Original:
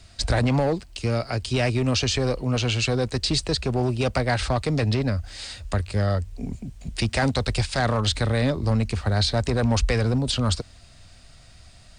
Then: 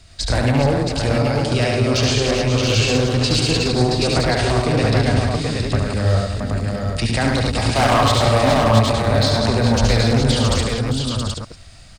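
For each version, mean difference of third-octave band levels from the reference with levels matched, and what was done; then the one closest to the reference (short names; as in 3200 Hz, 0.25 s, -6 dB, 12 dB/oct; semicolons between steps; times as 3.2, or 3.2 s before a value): 8.5 dB: reverse delay 0.11 s, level -4.5 dB; spectral gain 7.57–9.01, 580–1300 Hz +9 dB; wavefolder -12.5 dBFS; on a send: tapped delay 72/108/396/422/674/778 ms -4/-8/-13/-9.5/-5/-4.5 dB; on the sum: gain +1.5 dB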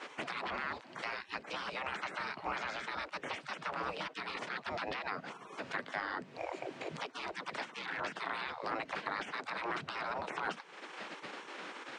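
12.5 dB: spectral gate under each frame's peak -25 dB weak; in parallel at -2 dB: limiter -31.5 dBFS, peak gain reduction 11 dB; on the sum: compressor 5:1, threshold -48 dBFS, peak gain reduction 16.5 dB; BPF 110–2000 Hz; gain +14.5 dB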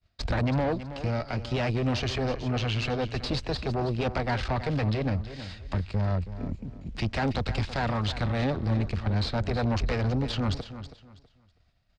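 5.5 dB: expander -37 dBFS; tube stage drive 23 dB, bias 0.8; air absorption 170 m; on a send: feedback echo 0.324 s, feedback 25%, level -12.5 dB; on the sum: gain +1.5 dB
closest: third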